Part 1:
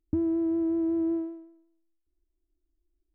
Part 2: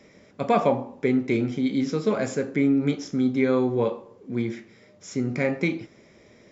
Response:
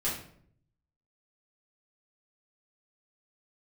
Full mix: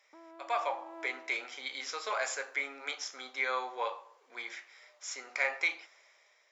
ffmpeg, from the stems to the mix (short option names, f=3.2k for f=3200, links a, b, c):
-filter_complex "[0:a]volume=-1.5dB[a];[1:a]volume=-9dB,asplit=2[b][c];[c]apad=whole_len=138738[d];[a][d]sidechaincompress=threshold=-32dB:ratio=8:attack=16:release=490[e];[e][b]amix=inputs=2:normalize=0,highpass=f=790:w=0.5412,highpass=f=790:w=1.3066,dynaudnorm=f=220:g=7:m=10dB"